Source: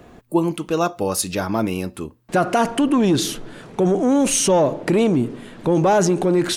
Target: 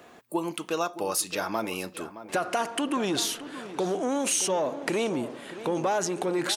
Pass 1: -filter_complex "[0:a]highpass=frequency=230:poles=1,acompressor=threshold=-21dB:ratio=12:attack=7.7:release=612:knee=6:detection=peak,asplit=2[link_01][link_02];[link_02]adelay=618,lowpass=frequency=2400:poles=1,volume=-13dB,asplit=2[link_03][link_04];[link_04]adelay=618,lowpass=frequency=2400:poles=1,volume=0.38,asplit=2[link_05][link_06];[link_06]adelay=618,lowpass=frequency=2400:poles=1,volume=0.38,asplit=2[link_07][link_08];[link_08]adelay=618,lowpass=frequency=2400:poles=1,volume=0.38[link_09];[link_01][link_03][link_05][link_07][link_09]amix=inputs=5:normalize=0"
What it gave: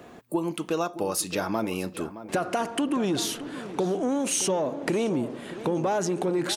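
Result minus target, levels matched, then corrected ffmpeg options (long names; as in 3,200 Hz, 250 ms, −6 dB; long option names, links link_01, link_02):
250 Hz band +2.5 dB
-filter_complex "[0:a]highpass=frequency=800:poles=1,acompressor=threshold=-21dB:ratio=12:attack=7.7:release=612:knee=6:detection=peak,asplit=2[link_01][link_02];[link_02]adelay=618,lowpass=frequency=2400:poles=1,volume=-13dB,asplit=2[link_03][link_04];[link_04]adelay=618,lowpass=frequency=2400:poles=1,volume=0.38,asplit=2[link_05][link_06];[link_06]adelay=618,lowpass=frequency=2400:poles=1,volume=0.38,asplit=2[link_07][link_08];[link_08]adelay=618,lowpass=frequency=2400:poles=1,volume=0.38[link_09];[link_01][link_03][link_05][link_07][link_09]amix=inputs=5:normalize=0"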